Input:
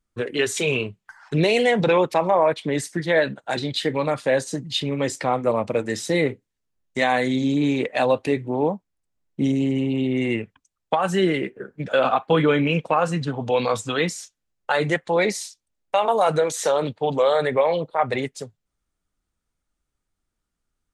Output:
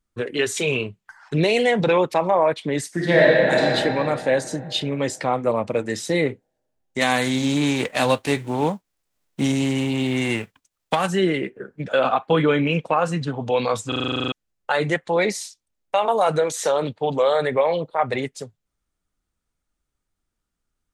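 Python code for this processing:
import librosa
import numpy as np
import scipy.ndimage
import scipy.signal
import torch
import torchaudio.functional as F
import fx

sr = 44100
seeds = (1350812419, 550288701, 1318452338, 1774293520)

y = fx.reverb_throw(x, sr, start_s=2.89, length_s=0.71, rt60_s=3.0, drr_db=-5.0)
y = fx.envelope_flatten(y, sr, power=0.6, at=(7.0, 11.06), fade=0.02)
y = fx.edit(y, sr, fx.stutter_over(start_s=13.88, slice_s=0.04, count=11), tone=tone)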